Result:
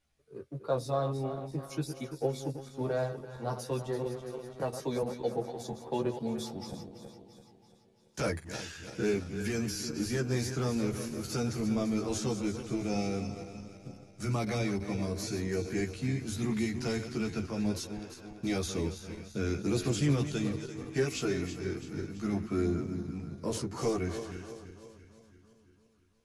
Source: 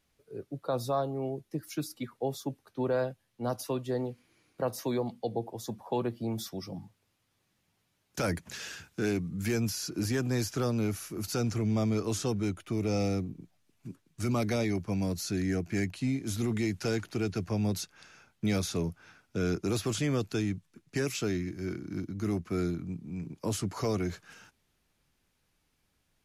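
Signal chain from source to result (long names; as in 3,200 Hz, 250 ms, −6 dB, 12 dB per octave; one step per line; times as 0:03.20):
feedback delay that plays each chunk backwards 168 ms, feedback 73%, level −9.5 dB
multi-voice chorus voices 4, 0.17 Hz, delay 14 ms, depth 1.4 ms
in parallel at −7.5 dB: dead-zone distortion −45.5 dBFS
on the sum: low-pass filter 11,000 Hz 24 dB per octave
0:04.06–0:05.03: multiband upward and downward compressor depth 40%
level −1.5 dB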